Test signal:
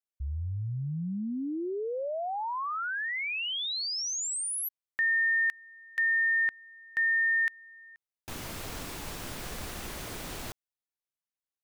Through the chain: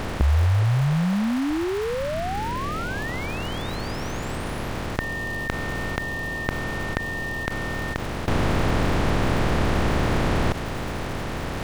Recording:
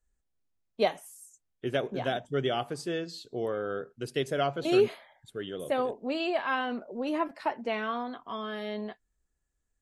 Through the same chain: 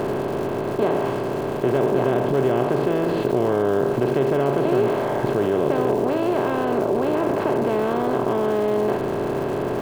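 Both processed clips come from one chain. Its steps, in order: spectral levelling over time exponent 0.2; in parallel at -1 dB: compressor with a negative ratio -27 dBFS; on the sum: low-pass 3 kHz 6 dB/octave; tilt EQ -3.5 dB/octave; crackle 480 per s -26 dBFS; trim -6.5 dB

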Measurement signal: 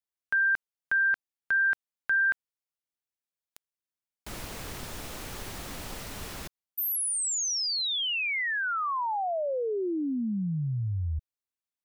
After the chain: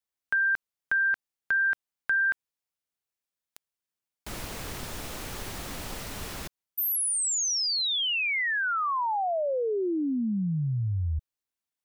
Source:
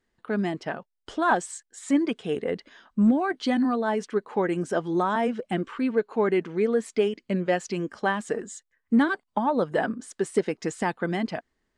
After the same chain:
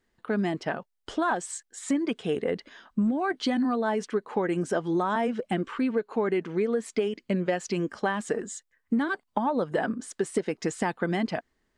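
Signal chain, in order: compression 10:1, threshold -24 dBFS; trim +2 dB

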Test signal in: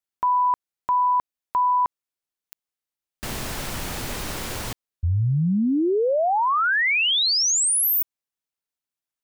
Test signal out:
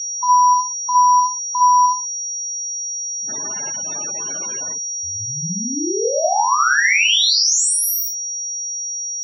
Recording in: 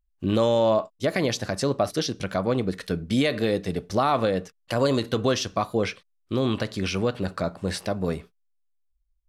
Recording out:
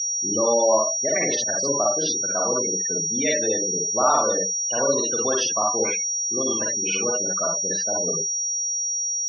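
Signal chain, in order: Schroeder reverb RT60 0.33 s, DRR -2 dB; whistle 5.7 kHz -23 dBFS; spectral gate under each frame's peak -20 dB strong; frequency weighting A

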